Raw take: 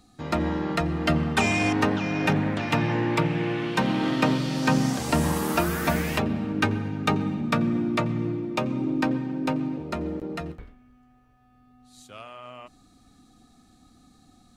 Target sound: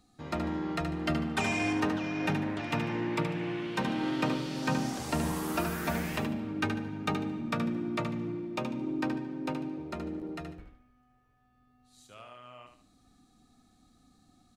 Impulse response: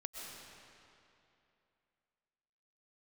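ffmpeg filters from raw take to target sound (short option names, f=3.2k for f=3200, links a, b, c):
-af "aecho=1:1:74|148|222|296:0.447|0.143|0.0457|0.0146,volume=-8dB"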